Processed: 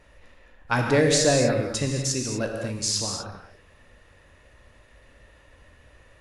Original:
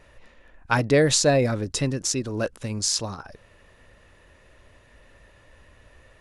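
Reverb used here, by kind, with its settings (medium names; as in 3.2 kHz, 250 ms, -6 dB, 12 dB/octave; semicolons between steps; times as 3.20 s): gated-style reverb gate 270 ms flat, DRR 1.5 dB; trim -2.5 dB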